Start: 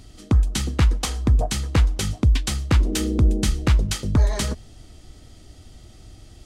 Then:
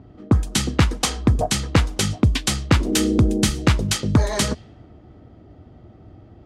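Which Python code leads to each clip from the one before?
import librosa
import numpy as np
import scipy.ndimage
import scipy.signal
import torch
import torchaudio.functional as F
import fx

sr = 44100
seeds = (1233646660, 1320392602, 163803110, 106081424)

y = fx.env_lowpass(x, sr, base_hz=880.0, full_db=-17.0)
y = scipy.signal.sosfilt(scipy.signal.butter(2, 100.0, 'highpass', fs=sr, output='sos'), y)
y = y * 10.0 ** (5.5 / 20.0)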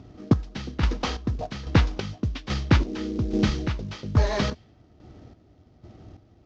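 y = fx.cvsd(x, sr, bps=32000)
y = fx.chopper(y, sr, hz=1.2, depth_pct=65, duty_pct=40)
y = y * 10.0 ** (-1.0 / 20.0)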